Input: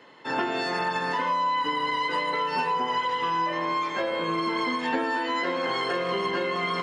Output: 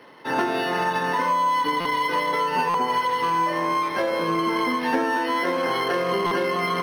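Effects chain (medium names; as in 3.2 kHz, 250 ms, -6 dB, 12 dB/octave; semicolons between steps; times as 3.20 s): buffer glitch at 1.80/2.69/6.26 s, samples 256, times 8; decimation joined by straight lines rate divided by 6×; trim +4.5 dB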